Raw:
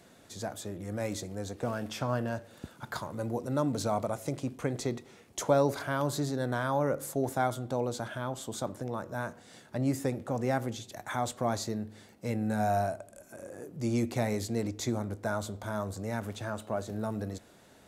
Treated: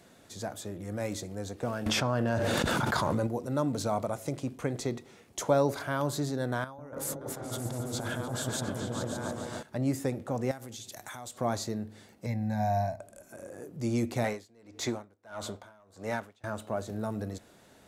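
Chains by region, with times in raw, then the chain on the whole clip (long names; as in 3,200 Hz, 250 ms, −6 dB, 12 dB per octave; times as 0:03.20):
0:01.86–0:03.27: high-shelf EQ 11,000 Hz −10.5 dB + envelope flattener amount 100%
0:06.64–0:09.63: compressor whose output falls as the input rises −40 dBFS + echo whose low-pass opens from repeat to repeat 142 ms, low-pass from 400 Hz, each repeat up 2 octaves, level 0 dB
0:10.51–0:11.38: high-shelf EQ 3,100 Hz +11.5 dB + downward compressor 5 to 1, threshold −40 dBFS
0:12.26–0:13.00: low-shelf EQ 180 Hz +5.5 dB + phaser with its sweep stopped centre 2,000 Hz, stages 8
0:14.24–0:16.44: mid-hump overdrive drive 14 dB, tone 3,500 Hz, clips at −18 dBFS + tremolo with a sine in dB 1.6 Hz, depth 30 dB
whole clip: no processing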